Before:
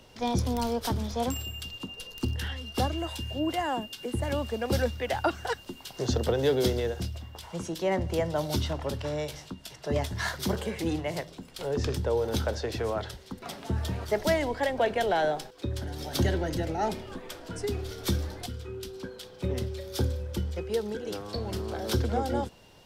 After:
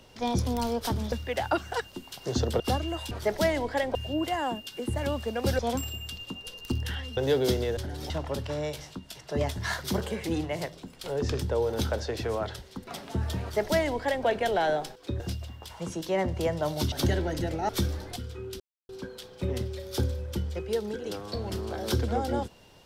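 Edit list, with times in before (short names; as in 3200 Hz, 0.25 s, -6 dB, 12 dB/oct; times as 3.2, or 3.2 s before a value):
1.12–2.7 swap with 4.85–6.33
6.93–8.65 swap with 15.75–16.08
13.97–14.81 copy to 3.21
16.85–17.99 cut
18.9 insert silence 0.29 s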